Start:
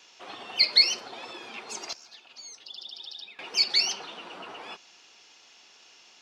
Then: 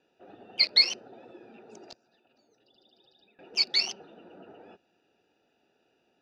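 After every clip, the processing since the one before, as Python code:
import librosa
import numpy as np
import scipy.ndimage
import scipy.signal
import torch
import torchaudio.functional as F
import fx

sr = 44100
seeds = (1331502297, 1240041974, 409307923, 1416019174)

y = fx.wiener(x, sr, points=41)
y = fx.high_shelf(y, sr, hz=10000.0, db=-11.0)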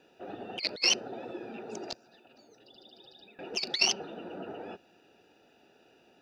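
y = fx.over_compress(x, sr, threshold_db=-30.0, ratio=-0.5)
y = y * librosa.db_to_amplitude(3.0)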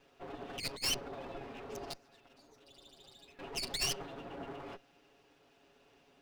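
y = fx.lower_of_two(x, sr, delay_ms=7.2)
y = 10.0 ** (-25.5 / 20.0) * np.tanh(y / 10.0 ** (-25.5 / 20.0))
y = y * librosa.db_to_amplitude(-2.0)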